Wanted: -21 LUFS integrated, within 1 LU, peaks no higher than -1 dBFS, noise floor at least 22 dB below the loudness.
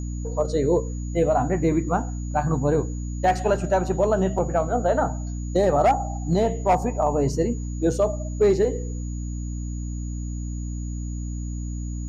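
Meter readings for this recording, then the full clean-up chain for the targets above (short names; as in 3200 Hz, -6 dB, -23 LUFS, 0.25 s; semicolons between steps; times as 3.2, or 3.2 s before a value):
hum 60 Hz; harmonics up to 300 Hz; hum level -27 dBFS; steady tone 6800 Hz; tone level -45 dBFS; loudness -24.0 LUFS; peak -10.0 dBFS; loudness target -21.0 LUFS
-> de-hum 60 Hz, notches 5; notch 6800 Hz, Q 30; gain +3 dB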